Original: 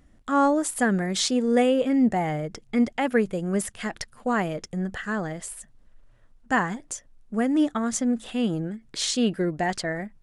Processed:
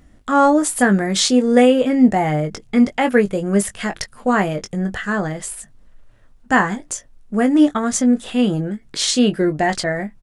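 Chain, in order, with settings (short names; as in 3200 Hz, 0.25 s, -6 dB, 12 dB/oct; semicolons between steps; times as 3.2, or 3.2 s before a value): doubler 20 ms -8 dB; gain +7 dB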